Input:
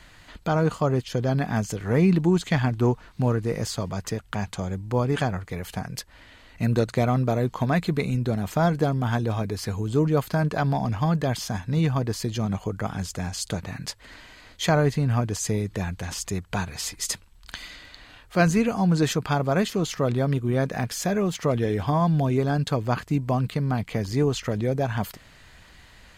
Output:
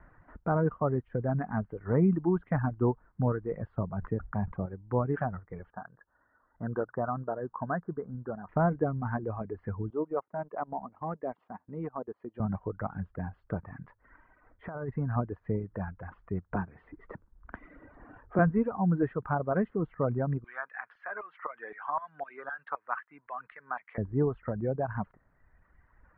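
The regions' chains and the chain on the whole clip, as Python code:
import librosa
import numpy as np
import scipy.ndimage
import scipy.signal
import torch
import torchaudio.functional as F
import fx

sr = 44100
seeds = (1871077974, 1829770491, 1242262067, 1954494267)

y = fx.chain(x, sr, fx.lowpass(hz=6100.0, slope=12),
    fx.tilt_shelf(db=3.5, hz=660.0),
    fx.sustainer(db_per_s=110.0), at=(3.78, 4.66))
y = fx.chain(y, sr, fx.steep_lowpass(hz=1700.0, slope=72),
    fx.tilt_eq(slope=3.0), at=(5.7, 8.49))
y = fx.chain(y, sr, fx.highpass(hz=320.0, slope=12),
    fx.peak_eq(hz=1600.0, db=-9.5, octaves=0.36),
    fx.transient(attack_db=-4, sustain_db=-11), at=(9.9, 12.4))
y = fx.chain(y, sr, fx.low_shelf(hz=460.0, db=-7.0),
    fx.over_compress(threshold_db=-27.0, ratio=-0.5), at=(14.68, 15.16))
y = fx.chain(y, sr, fx.peak_eq(hz=300.0, db=8.5, octaves=1.9),
    fx.band_squash(depth_pct=40), at=(16.55, 18.39))
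y = fx.chain(y, sr, fx.peak_eq(hz=5300.0, db=14.0, octaves=2.0),
    fx.filter_lfo_highpass(shape='saw_down', hz=3.9, low_hz=960.0, high_hz=2000.0, q=1.3),
    fx.band_squash(depth_pct=40), at=(20.44, 23.98))
y = fx.dereverb_blind(y, sr, rt60_s=1.9)
y = scipy.signal.sosfilt(scipy.signal.butter(6, 1600.0, 'lowpass', fs=sr, output='sos'), y)
y = y * 10.0 ** (-4.0 / 20.0)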